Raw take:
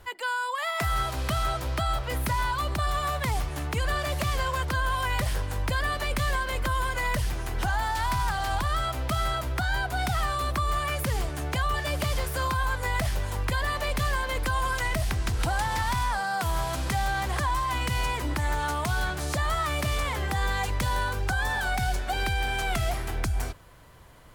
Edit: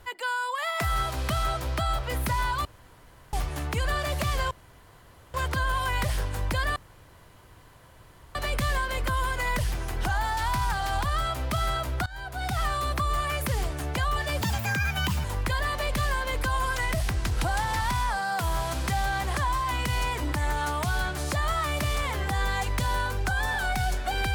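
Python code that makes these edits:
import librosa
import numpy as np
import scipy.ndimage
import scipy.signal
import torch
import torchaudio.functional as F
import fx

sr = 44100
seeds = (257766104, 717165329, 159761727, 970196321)

y = fx.edit(x, sr, fx.room_tone_fill(start_s=2.65, length_s=0.68),
    fx.insert_room_tone(at_s=4.51, length_s=0.83),
    fx.insert_room_tone(at_s=5.93, length_s=1.59),
    fx.fade_in_from(start_s=9.64, length_s=0.58, floor_db=-20.0),
    fx.speed_span(start_s=11.99, length_s=1.27, speed=1.53), tone=tone)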